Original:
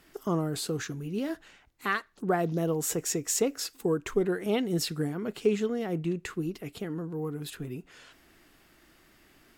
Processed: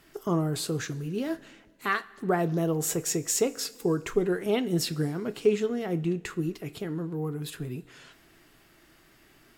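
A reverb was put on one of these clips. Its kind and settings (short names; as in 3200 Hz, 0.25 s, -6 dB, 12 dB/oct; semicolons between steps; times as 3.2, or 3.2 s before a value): two-slope reverb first 0.21 s, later 1.8 s, from -18 dB, DRR 10.5 dB; gain +1 dB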